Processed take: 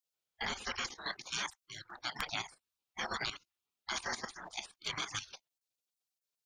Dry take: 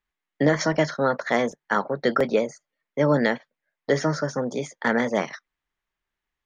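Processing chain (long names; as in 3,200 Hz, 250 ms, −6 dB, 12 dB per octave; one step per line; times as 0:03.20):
gate on every frequency bin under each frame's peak −25 dB weak
output level in coarse steps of 11 dB
level +7.5 dB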